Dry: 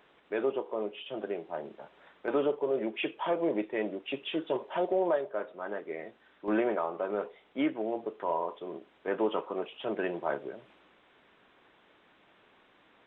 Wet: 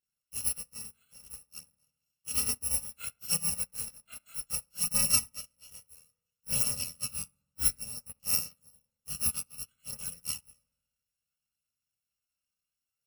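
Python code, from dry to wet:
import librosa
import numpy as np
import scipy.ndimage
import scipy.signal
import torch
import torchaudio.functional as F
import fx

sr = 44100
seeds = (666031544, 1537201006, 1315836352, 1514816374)

p1 = fx.bit_reversed(x, sr, seeds[0], block=128)
p2 = fx.chorus_voices(p1, sr, voices=2, hz=0.3, base_ms=27, depth_ms=2.3, mix_pct=60)
p3 = p2 + fx.echo_filtered(p2, sr, ms=69, feedback_pct=73, hz=1900.0, wet_db=-10.5, dry=0)
p4 = fx.upward_expand(p3, sr, threshold_db=-48.0, expansion=2.5)
y = p4 * 10.0 ** (7.5 / 20.0)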